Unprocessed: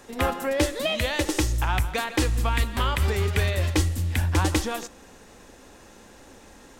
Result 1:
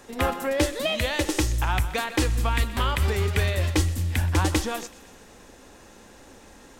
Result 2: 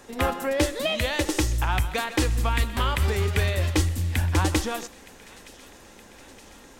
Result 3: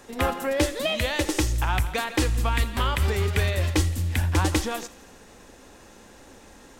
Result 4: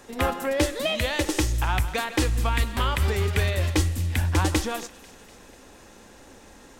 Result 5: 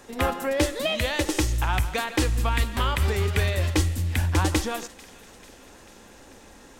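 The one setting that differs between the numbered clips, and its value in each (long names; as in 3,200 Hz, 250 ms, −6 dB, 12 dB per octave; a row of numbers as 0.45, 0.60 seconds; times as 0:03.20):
delay with a high-pass on its return, delay time: 126, 918, 84, 246, 442 milliseconds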